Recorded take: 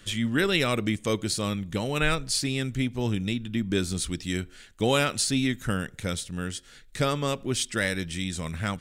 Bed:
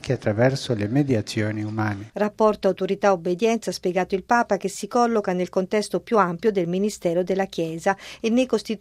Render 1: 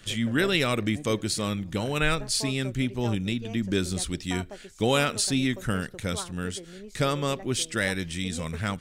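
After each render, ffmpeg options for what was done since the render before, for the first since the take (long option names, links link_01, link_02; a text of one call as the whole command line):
ffmpeg -i in.wav -i bed.wav -filter_complex "[1:a]volume=-21dB[link_01];[0:a][link_01]amix=inputs=2:normalize=0" out.wav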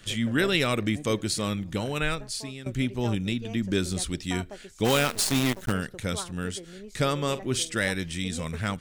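ffmpeg -i in.wav -filter_complex "[0:a]asplit=3[link_01][link_02][link_03];[link_01]afade=type=out:start_time=4.84:duration=0.02[link_04];[link_02]acrusher=bits=5:dc=4:mix=0:aa=0.000001,afade=type=in:start_time=4.84:duration=0.02,afade=type=out:start_time=5.71:duration=0.02[link_05];[link_03]afade=type=in:start_time=5.71:duration=0.02[link_06];[link_04][link_05][link_06]amix=inputs=3:normalize=0,asettb=1/sr,asplit=3[link_07][link_08][link_09];[link_07]atrim=end=7.194[link_10];[link_08]atrim=start=7.19:end=7.77,asetpts=PTS-STARTPTS,afade=type=in:duration=0.004:curve=qsin,afade=type=out:start_time=0.576:duration=0.004:curve=qsin,asplit=2[link_11][link_12];[link_12]adelay=46,volume=-13.5dB[link_13];[link_11][link_13]amix=inputs=2:normalize=0,atrim=end_sample=25578[link_14];[link_09]atrim=start=7.766[link_15];[link_10][link_14]acrossfade=duration=0.004:curve1=hsin:curve2=qsin[link_16];[link_16][link_15]acrossfade=duration=0.004:curve1=qsin:curve2=hsin,asplit=2[link_17][link_18];[link_17]atrim=end=2.66,asetpts=PTS-STARTPTS,afade=type=out:start_time=1.7:duration=0.96:silence=0.188365[link_19];[link_18]atrim=start=2.66,asetpts=PTS-STARTPTS,afade=type=in:duration=0.004:curve=hsin:silence=0.188365[link_20];[link_19][link_20]concat=n=2:v=0:a=1" out.wav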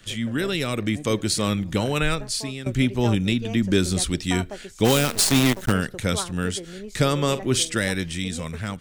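ffmpeg -i in.wav -filter_complex "[0:a]acrossover=split=430|4000[link_01][link_02][link_03];[link_02]alimiter=limit=-21dB:level=0:latency=1:release=102[link_04];[link_01][link_04][link_03]amix=inputs=3:normalize=0,dynaudnorm=framelen=250:gausssize=9:maxgain=6.5dB" out.wav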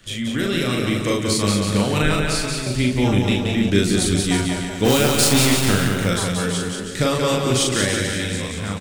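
ffmpeg -i in.wav -filter_complex "[0:a]asplit=2[link_01][link_02];[link_02]adelay=40,volume=-2.5dB[link_03];[link_01][link_03]amix=inputs=2:normalize=0,asplit=2[link_04][link_05];[link_05]aecho=0:1:180|324|439.2|531.4|605.1:0.631|0.398|0.251|0.158|0.1[link_06];[link_04][link_06]amix=inputs=2:normalize=0" out.wav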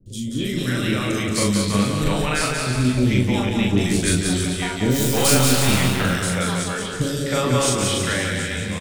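ffmpeg -i in.wav -filter_complex "[0:a]asplit=2[link_01][link_02];[link_02]adelay=24,volume=-10.5dB[link_03];[link_01][link_03]amix=inputs=2:normalize=0,acrossover=split=420|3900[link_04][link_05][link_06];[link_06]adelay=60[link_07];[link_05]adelay=310[link_08];[link_04][link_08][link_07]amix=inputs=3:normalize=0" out.wav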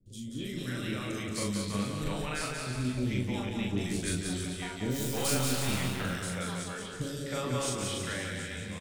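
ffmpeg -i in.wav -af "volume=-13dB" out.wav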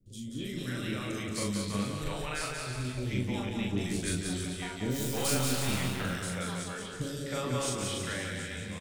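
ffmpeg -i in.wav -filter_complex "[0:a]asettb=1/sr,asplit=3[link_01][link_02][link_03];[link_01]atrim=end=1.974[link_04];[link_02]atrim=start=1.97:end=3.13,asetpts=PTS-STARTPTS,afade=type=in:duration=0.004:curve=qsin,afade=type=out:start_time=1.156:duration=0.004:curve=qsin,equalizer=frequency=220:width_type=o:width=0.65:gain=-10.5[link_05];[link_03]atrim=start=3.126[link_06];[link_04][link_05]acrossfade=duration=0.004:curve1=hsin:curve2=qsin[link_07];[link_07][link_06]acrossfade=duration=0.004:curve1=qsin:curve2=hsin" out.wav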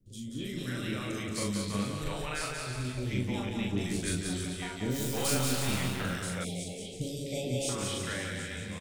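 ffmpeg -i in.wav -filter_complex "[0:a]asettb=1/sr,asplit=3[link_01][link_02][link_03];[link_01]atrim=end=6.444[link_04];[link_02]atrim=start=6.44:end=7.69,asetpts=PTS-STARTPTS,afade=type=in:duration=0.004:curve=qsin,afade=type=out:start_time=1.246:duration=0.004:curve=qsin,asuperstop=centerf=1300:order=12:qfactor=0.91[link_05];[link_03]atrim=start=7.686[link_06];[link_04][link_05]acrossfade=duration=0.004:curve1=hsin:curve2=qsin[link_07];[link_07][link_06]acrossfade=duration=0.004:curve1=qsin:curve2=hsin" out.wav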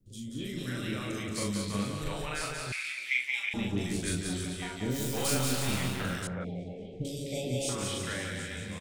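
ffmpeg -i in.wav -filter_complex "[0:a]asettb=1/sr,asplit=3[link_01][link_02][link_03];[link_01]atrim=end=2.724[link_04];[link_02]atrim=start=2.72:end=3.54,asetpts=PTS-STARTPTS,afade=type=in:duration=0.004:curve=qsin,afade=type=out:start_time=0.816:duration=0.004:curve=qsin,highpass=frequency=2200:width_type=q:width=7.3[link_05];[link_03]atrim=start=3.536[link_06];[link_04][link_05]acrossfade=duration=0.004:curve1=hsin:curve2=qsin[link_07];[link_07][link_06]acrossfade=duration=0.004:curve1=qsin:curve2=hsin,asettb=1/sr,asplit=3[link_08][link_09][link_10];[link_08]atrim=end=6.274[link_11];[link_09]atrim=start=6.27:end=7.05,asetpts=PTS-STARTPTS,afade=type=in:duration=0.004:curve=qsin,afade=type=out:start_time=0.776:duration=0.004:curve=qsin,lowpass=1400[link_12];[link_10]atrim=start=7.046[link_13];[link_11][link_12]acrossfade=duration=0.004:curve1=hsin:curve2=qsin[link_14];[link_14][link_13]acrossfade=duration=0.004:curve1=qsin:curve2=hsin" out.wav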